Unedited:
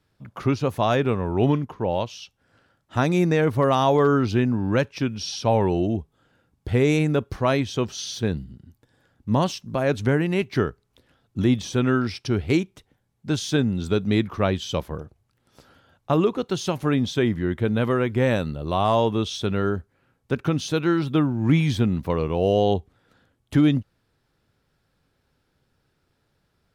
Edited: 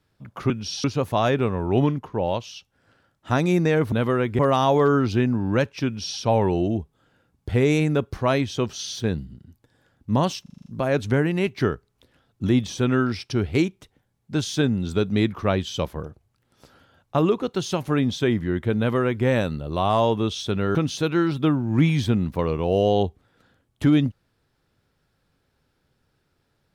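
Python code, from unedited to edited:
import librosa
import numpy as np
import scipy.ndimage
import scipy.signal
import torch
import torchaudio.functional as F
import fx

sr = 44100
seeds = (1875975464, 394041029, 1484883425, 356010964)

y = fx.edit(x, sr, fx.duplicate(start_s=5.05, length_s=0.34, to_s=0.5),
    fx.stutter(start_s=9.61, slice_s=0.04, count=7),
    fx.duplicate(start_s=17.73, length_s=0.47, to_s=3.58),
    fx.cut(start_s=19.7, length_s=0.76), tone=tone)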